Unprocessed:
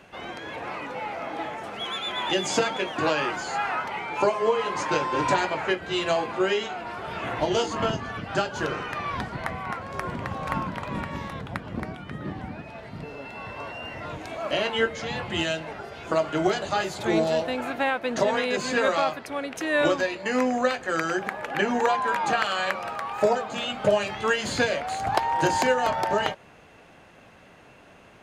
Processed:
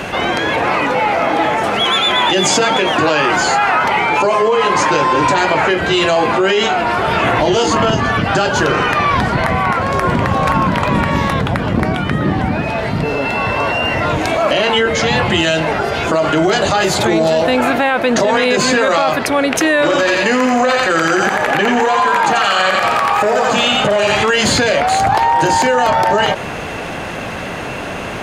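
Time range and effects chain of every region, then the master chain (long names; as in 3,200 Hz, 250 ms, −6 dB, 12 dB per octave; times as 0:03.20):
0:19.82–0:24.29: feedback echo with a high-pass in the loop 86 ms, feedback 51%, high-pass 790 Hz, level −3 dB + saturating transformer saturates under 1,100 Hz
whole clip: boost into a limiter +20 dB; envelope flattener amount 50%; level −5 dB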